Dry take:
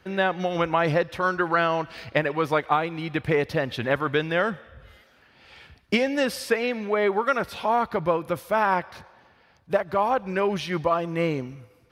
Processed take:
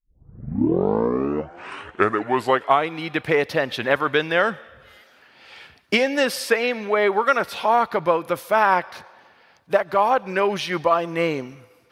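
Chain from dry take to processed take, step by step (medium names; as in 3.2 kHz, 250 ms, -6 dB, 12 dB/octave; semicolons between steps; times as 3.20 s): tape start-up on the opening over 2.96 s; high-pass 380 Hz 6 dB/octave; trim +5.5 dB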